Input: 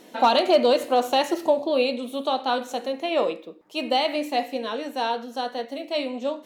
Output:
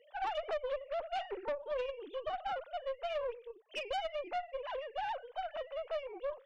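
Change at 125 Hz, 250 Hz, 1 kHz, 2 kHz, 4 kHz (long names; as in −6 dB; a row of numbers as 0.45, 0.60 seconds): can't be measured, −29.5 dB, −14.5 dB, −12.5 dB, −18.5 dB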